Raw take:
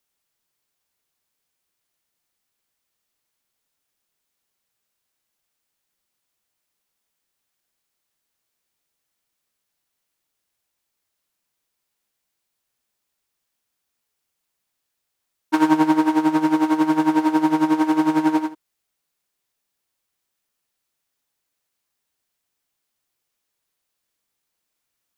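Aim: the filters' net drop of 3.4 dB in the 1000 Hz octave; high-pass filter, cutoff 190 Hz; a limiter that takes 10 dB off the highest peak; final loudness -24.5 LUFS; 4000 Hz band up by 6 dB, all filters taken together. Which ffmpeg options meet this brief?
-af "highpass=190,equalizer=f=1k:t=o:g=-4,equalizer=f=4k:t=o:g=8,alimiter=limit=-15dB:level=0:latency=1"

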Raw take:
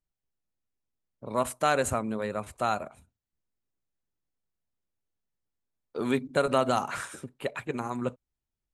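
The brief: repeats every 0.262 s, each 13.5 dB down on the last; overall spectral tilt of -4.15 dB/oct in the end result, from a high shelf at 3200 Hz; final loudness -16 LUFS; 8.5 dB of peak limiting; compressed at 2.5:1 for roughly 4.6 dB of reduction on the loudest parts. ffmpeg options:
-af "highshelf=f=3.2k:g=4.5,acompressor=threshold=-26dB:ratio=2.5,alimiter=limit=-21.5dB:level=0:latency=1,aecho=1:1:262|524:0.211|0.0444,volume=19dB"

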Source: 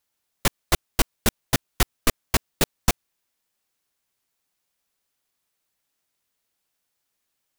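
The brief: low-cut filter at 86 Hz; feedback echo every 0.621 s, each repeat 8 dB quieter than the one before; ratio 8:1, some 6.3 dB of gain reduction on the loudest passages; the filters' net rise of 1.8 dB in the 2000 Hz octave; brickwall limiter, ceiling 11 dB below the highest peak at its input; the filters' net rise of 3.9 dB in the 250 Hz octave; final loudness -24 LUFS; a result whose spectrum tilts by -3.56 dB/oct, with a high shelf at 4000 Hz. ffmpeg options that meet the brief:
-af "highpass=86,equalizer=f=250:t=o:g=5,equalizer=f=2k:t=o:g=3,highshelf=f=4k:g=-3.5,acompressor=threshold=-22dB:ratio=8,alimiter=limit=-20dB:level=0:latency=1,aecho=1:1:621|1242|1863|2484|3105:0.398|0.159|0.0637|0.0255|0.0102,volume=14.5dB"

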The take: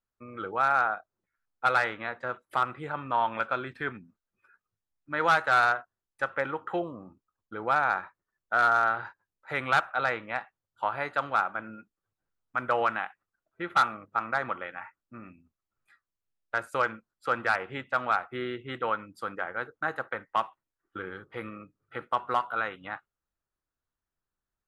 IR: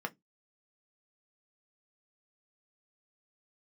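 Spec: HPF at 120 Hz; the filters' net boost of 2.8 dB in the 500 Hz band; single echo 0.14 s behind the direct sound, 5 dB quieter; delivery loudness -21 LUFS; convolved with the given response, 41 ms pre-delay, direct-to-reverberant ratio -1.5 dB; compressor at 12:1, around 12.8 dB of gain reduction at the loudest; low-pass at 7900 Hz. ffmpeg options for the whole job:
-filter_complex "[0:a]highpass=120,lowpass=7.9k,equalizer=f=500:t=o:g=3.5,acompressor=threshold=-31dB:ratio=12,aecho=1:1:140:0.562,asplit=2[a][b];[1:a]atrim=start_sample=2205,adelay=41[c];[b][c]afir=irnorm=-1:irlink=0,volume=-1.5dB[d];[a][d]amix=inputs=2:normalize=0,volume=11.5dB"

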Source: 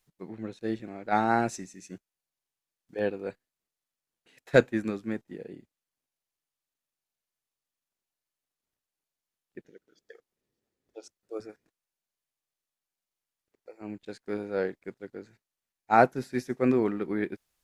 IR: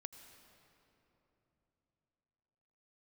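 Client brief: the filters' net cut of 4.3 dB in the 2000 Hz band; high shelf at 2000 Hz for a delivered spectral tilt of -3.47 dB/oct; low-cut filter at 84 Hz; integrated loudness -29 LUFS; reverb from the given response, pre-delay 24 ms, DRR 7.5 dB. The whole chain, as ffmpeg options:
-filter_complex "[0:a]highpass=84,highshelf=f=2k:g=3.5,equalizer=f=2k:t=o:g=-8.5,asplit=2[a][b];[1:a]atrim=start_sample=2205,adelay=24[c];[b][c]afir=irnorm=-1:irlink=0,volume=-2.5dB[d];[a][d]amix=inputs=2:normalize=0"

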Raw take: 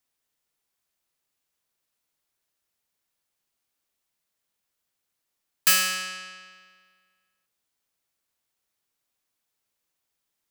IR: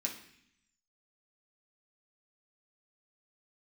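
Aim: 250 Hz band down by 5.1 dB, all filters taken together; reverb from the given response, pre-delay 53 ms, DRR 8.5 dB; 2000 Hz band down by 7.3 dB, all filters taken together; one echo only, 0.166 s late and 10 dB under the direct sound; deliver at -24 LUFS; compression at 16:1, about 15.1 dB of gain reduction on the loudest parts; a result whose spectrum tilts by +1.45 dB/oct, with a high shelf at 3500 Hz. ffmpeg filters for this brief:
-filter_complex "[0:a]equalizer=f=250:t=o:g=-9,equalizer=f=2k:t=o:g=-8.5,highshelf=f=3.5k:g=-3.5,acompressor=threshold=-33dB:ratio=16,aecho=1:1:166:0.316,asplit=2[a][b];[1:a]atrim=start_sample=2205,adelay=53[c];[b][c]afir=irnorm=-1:irlink=0,volume=-9.5dB[d];[a][d]amix=inputs=2:normalize=0,volume=14.5dB"

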